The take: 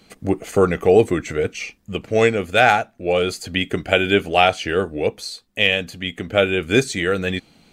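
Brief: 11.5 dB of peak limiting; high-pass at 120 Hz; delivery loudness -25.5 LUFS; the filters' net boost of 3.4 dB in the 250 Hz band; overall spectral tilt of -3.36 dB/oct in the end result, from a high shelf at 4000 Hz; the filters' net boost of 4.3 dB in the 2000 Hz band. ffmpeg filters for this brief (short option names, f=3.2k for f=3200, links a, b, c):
-af "highpass=120,equalizer=f=250:t=o:g=5,equalizer=f=2k:t=o:g=7.5,highshelf=f=4k:g=-6.5,volume=-3.5dB,alimiter=limit=-12.5dB:level=0:latency=1"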